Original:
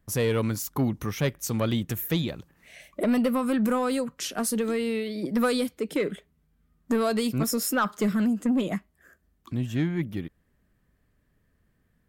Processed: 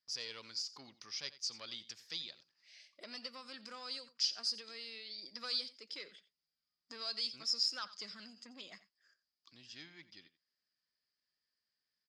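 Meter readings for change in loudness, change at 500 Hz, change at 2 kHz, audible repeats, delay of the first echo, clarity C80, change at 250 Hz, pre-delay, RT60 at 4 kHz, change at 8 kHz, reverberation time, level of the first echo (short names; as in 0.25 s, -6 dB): -12.5 dB, -28.0 dB, -16.0 dB, 1, 88 ms, none, -34.0 dB, none, none, -13.5 dB, none, -16.5 dB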